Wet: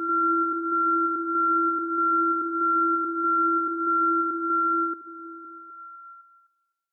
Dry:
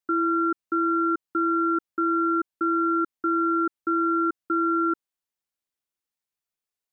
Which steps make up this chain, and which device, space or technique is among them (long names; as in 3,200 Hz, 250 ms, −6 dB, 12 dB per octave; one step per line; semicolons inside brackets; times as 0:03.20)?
echo through a band-pass that steps 255 ms, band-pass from 190 Hz, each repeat 0.7 octaves, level −9 dB
ghost voice (reversed playback; convolution reverb RT60 2.7 s, pre-delay 61 ms, DRR −1 dB; reversed playback; high-pass filter 350 Hz 6 dB per octave)
level −4.5 dB